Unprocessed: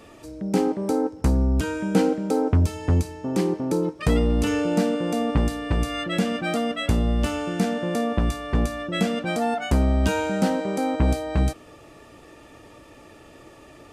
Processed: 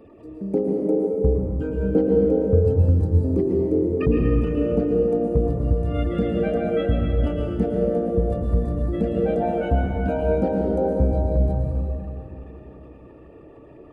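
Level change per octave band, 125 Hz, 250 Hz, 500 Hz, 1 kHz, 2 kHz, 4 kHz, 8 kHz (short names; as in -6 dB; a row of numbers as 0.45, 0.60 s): +3.0 dB, +0.5 dB, +5.0 dB, -4.0 dB, -8.5 dB, under -10 dB, under -20 dB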